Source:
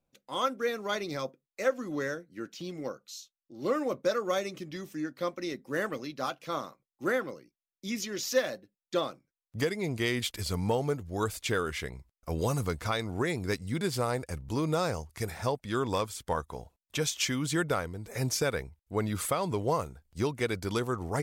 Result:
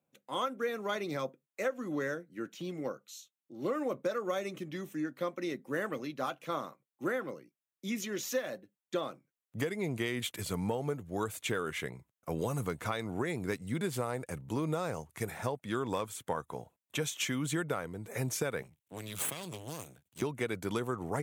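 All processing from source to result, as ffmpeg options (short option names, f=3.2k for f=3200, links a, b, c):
-filter_complex "[0:a]asettb=1/sr,asplit=3[a][b][c];[a]atrim=end=18.624[d];[b]atrim=start=18.62:end=20.22,asetpts=PTS-STARTPTS,afade=t=in:d=0.004:c=qsin,afade=t=out:st=1.596:d=0.004:c=qsin,highshelf=f=2.1k:t=q:w=1.5:g=7.5,acrossover=split=130|3000[e][f][g];[f]acompressor=threshold=-39dB:ratio=4:attack=3.2:release=140:knee=2.83:detection=peak[h];[e][h][g]amix=inputs=3:normalize=0,aeval=exprs='max(val(0),0)':c=same[i];[c]atrim=start=20.216[j];[d][i]acrossfade=d=0.004:c1=hsin:c2=qsin[k];[k][j]acrossfade=d=0.004:c1=qsin:c2=hsin,highpass=f=110:w=0.5412,highpass=f=110:w=1.3066,equalizer=f=4.9k:t=o:w=0.51:g=-11,acompressor=threshold=-29dB:ratio=6"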